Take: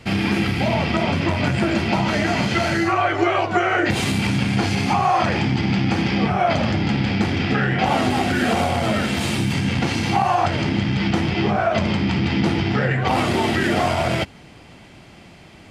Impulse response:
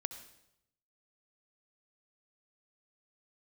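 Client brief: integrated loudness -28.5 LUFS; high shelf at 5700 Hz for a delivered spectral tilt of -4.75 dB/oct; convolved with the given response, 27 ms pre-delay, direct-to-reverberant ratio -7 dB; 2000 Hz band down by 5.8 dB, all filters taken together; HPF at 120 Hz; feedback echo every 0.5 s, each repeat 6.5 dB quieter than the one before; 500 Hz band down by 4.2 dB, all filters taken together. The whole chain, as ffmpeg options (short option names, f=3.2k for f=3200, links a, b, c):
-filter_complex "[0:a]highpass=120,equalizer=f=500:t=o:g=-6,equalizer=f=2k:t=o:g=-6.5,highshelf=f=5.7k:g=-4.5,aecho=1:1:500|1000|1500|2000|2500|3000:0.473|0.222|0.105|0.0491|0.0231|0.0109,asplit=2[a][b];[1:a]atrim=start_sample=2205,adelay=27[c];[b][c]afir=irnorm=-1:irlink=0,volume=7.5dB[d];[a][d]amix=inputs=2:normalize=0,volume=-14dB"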